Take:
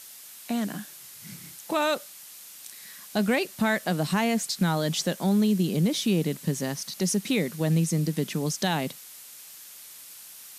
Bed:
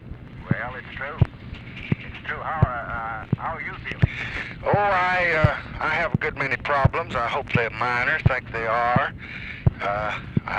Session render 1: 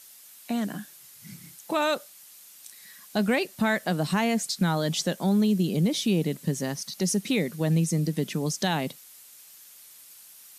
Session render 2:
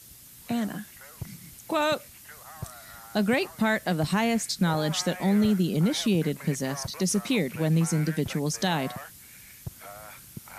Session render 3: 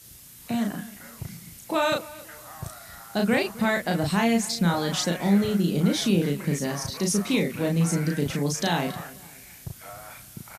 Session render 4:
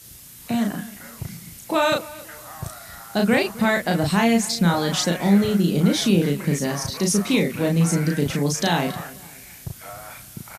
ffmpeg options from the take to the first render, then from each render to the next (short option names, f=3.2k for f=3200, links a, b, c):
-af "afftdn=nr=6:nf=-46"
-filter_complex "[1:a]volume=-19.5dB[a];[0:a][a]amix=inputs=2:normalize=0"
-filter_complex "[0:a]asplit=2[a][b];[b]adelay=35,volume=-3dB[c];[a][c]amix=inputs=2:normalize=0,asplit=2[d][e];[e]adelay=264,lowpass=f=3.8k:p=1,volume=-19dB,asplit=2[f][g];[g]adelay=264,lowpass=f=3.8k:p=1,volume=0.4,asplit=2[h][i];[i]adelay=264,lowpass=f=3.8k:p=1,volume=0.4[j];[d][f][h][j]amix=inputs=4:normalize=0"
-af "volume=4dB"